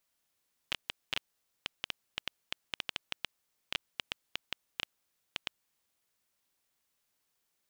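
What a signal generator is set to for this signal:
Geiger counter clicks 6.4 per second −14.5 dBFS 4.86 s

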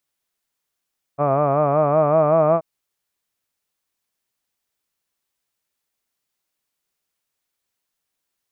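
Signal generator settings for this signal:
vowel by formant synthesis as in hud, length 1.43 s, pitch 139 Hz, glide +2.5 semitones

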